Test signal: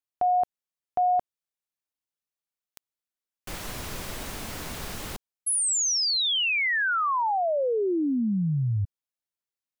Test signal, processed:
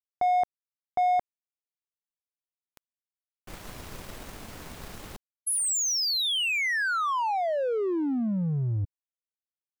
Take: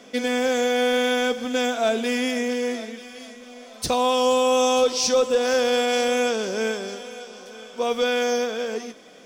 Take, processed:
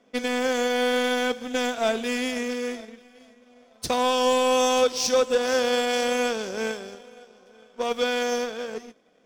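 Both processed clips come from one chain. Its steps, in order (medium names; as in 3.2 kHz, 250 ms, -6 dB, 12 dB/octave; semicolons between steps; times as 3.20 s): power-law waveshaper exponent 1.4; tape noise reduction on one side only decoder only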